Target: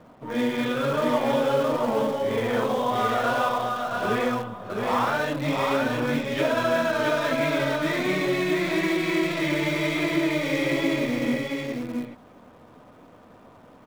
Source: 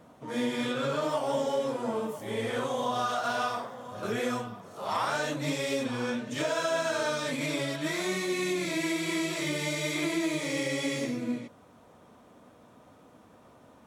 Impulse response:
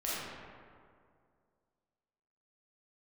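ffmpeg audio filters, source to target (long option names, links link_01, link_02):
-filter_complex "[0:a]lowpass=3100,asplit=2[link_01][link_02];[link_02]acrusher=bits=6:dc=4:mix=0:aa=0.000001,volume=-11dB[link_03];[link_01][link_03]amix=inputs=2:normalize=0,aecho=1:1:670:0.668,volume=3dB"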